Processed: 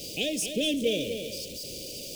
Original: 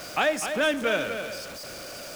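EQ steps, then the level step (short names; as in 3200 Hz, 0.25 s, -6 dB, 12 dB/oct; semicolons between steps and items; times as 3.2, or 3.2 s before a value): elliptic band-stop 480–2900 Hz, stop band 70 dB; +3.0 dB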